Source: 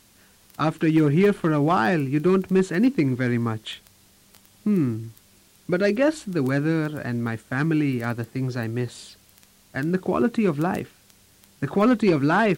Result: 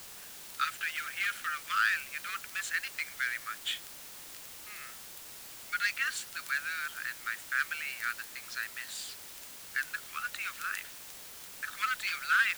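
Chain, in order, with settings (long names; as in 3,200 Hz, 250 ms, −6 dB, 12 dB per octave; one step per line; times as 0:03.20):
Butterworth high-pass 1,300 Hz 72 dB per octave
parametric band 7,300 Hz +3 dB 0.21 octaves
bit-depth reduction 8 bits, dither triangular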